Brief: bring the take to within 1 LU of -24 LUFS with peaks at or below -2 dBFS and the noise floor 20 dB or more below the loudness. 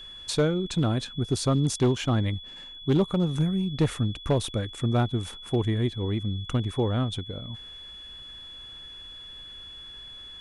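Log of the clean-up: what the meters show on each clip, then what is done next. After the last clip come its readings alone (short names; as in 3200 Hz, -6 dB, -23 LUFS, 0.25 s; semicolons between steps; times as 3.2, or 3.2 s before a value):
clipped 0.6%; flat tops at -16.0 dBFS; steady tone 3400 Hz; tone level -41 dBFS; loudness -27.0 LUFS; peak -16.0 dBFS; loudness target -24.0 LUFS
-> clip repair -16 dBFS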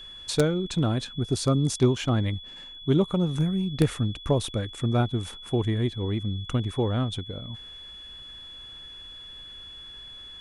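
clipped 0.0%; steady tone 3400 Hz; tone level -41 dBFS
-> notch 3400 Hz, Q 30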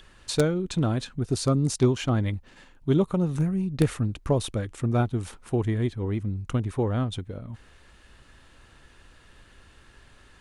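steady tone none; loudness -26.5 LUFS; peak -7.0 dBFS; loudness target -24.0 LUFS
-> gain +2.5 dB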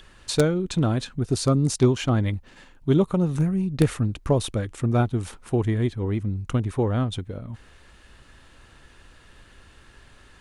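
loudness -24.0 LUFS; peak -4.5 dBFS; noise floor -52 dBFS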